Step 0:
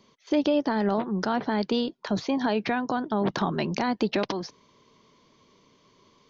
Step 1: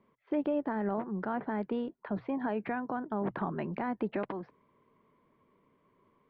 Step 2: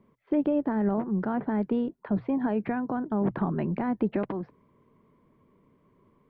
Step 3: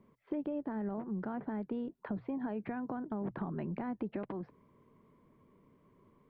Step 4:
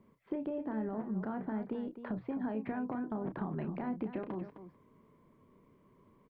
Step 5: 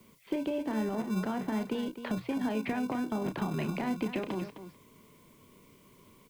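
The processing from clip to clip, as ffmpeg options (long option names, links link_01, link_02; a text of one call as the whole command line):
ffmpeg -i in.wav -af "lowpass=frequency=2100:width=0.5412,lowpass=frequency=2100:width=1.3066,bandreject=frequency=60:width_type=h:width=6,bandreject=frequency=120:width_type=h:width=6,volume=-7.5dB" out.wav
ffmpeg -i in.wav -af "lowshelf=frequency=370:gain=11" out.wav
ffmpeg -i in.wav -af "acompressor=threshold=-35dB:ratio=3,volume=-2dB" out.wav
ffmpeg -i in.wav -af "aecho=1:1:32.07|259.5:0.355|0.282" out.wav
ffmpeg -i in.wav -filter_complex "[0:a]acrossover=split=210|260|1500[link_01][link_02][link_03][link_04];[link_01]acrusher=samples=35:mix=1:aa=0.000001[link_05];[link_04]aexciter=amount=3.4:drive=8.8:freq=2200[link_06];[link_05][link_02][link_03][link_06]amix=inputs=4:normalize=0,volume=5dB" out.wav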